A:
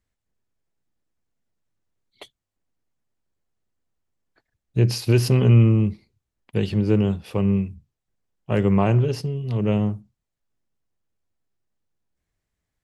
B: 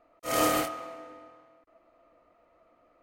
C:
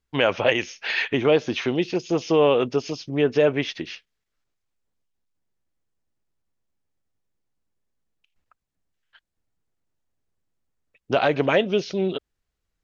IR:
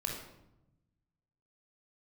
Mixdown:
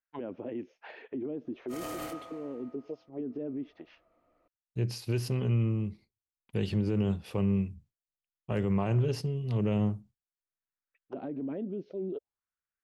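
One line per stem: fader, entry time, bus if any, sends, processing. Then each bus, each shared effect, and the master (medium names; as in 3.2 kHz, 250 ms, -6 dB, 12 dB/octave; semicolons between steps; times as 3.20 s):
5.86 s -12.5 dB -> 6.19 s -5.5 dB, 0.00 s, no bus, no send, gate with hold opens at -45 dBFS
-8.5 dB, 1.45 s, bus A, no send, none
-5.0 dB, 0.00 s, bus A, no send, auto-wah 270–1600 Hz, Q 3.1, down, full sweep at -18.5 dBFS; auto duck -15 dB, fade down 0.50 s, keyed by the first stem
bus A: 0.0 dB, bass shelf 290 Hz +7 dB; peak limiter -29 dBFS, peak gain reduction 11 dB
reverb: none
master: peak limiter -20.5 dBFS, peak gain reduction 7.5 dB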